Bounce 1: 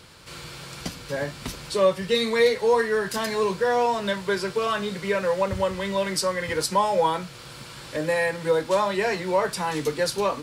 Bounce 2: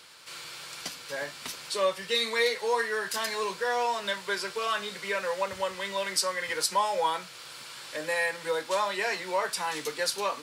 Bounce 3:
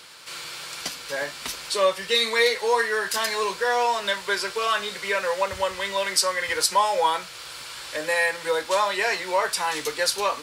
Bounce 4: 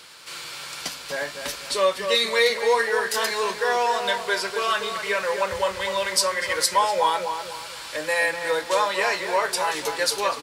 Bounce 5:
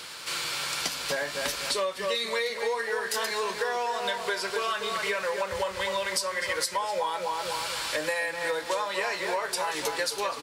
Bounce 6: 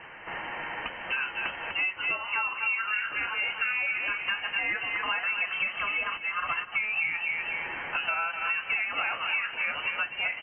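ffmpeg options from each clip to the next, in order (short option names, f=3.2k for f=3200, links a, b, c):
-af "highpass=f=1.2k:p=1"
-af "asubboost=boost=11:cutoff=51,volume=6dB"
-filter_complex "[0:a]asplit=2[a][b];[b]adelay=247,lowpass=f=1.6k:p=1,volume=-6dB,asplit=2[c][d];[d]adelay=247,lowpass=f=1.6k:p=1,volume=0.4,asplit=2[e][f];[f]adelay=247,lowpass=f=1.6k:p=1,volume=0.4,asplit=2[g][h];[h]adelay=247,lowpass=f=1.6k:p=1,volume=0.4,asplit=2[i][j];[j]adelay=247,lowpass=f=1.6k:p=1,volume=0.4[k];[a][c][e][g][i][k]amix=inputs=6:normalize=0"
-af "acompressor=threshold=-31dB:ratio=10,volume=5dB"
-af "lowpass=f=2.7k:t=q:w=0.5098,lowpass=f=2.7k:t=q:w=0.6013,lowpass=f=2.7k:t=q:w=0.9,lowpass=f=2.7k:t=q:w=2.563,afreqshift=-3200"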